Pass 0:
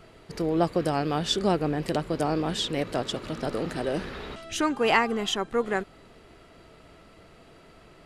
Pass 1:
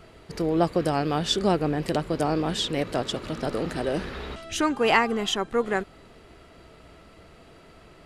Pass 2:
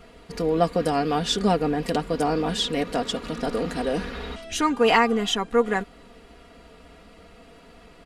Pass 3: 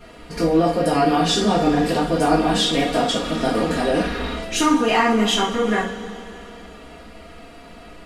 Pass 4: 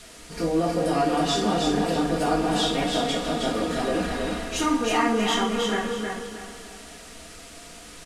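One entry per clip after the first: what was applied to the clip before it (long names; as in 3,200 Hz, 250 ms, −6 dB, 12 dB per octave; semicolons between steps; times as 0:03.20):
parametric band 66 Hz +6 dB 0.4 octaves; level +1.5 dB
comb filter 4.2 ms, depth 69%
brickwall limiter −16 dBFS, peak gain reduction 10 dB; coupled-rooms reverb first 0.41 s, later 3.3 s, from −19 dB, DRR −7 dB
noise in a band 1,200–10,000 Hz −42 dBFS; repeating echo 317 ms, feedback 31%, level −4 dB; level −6.5 dB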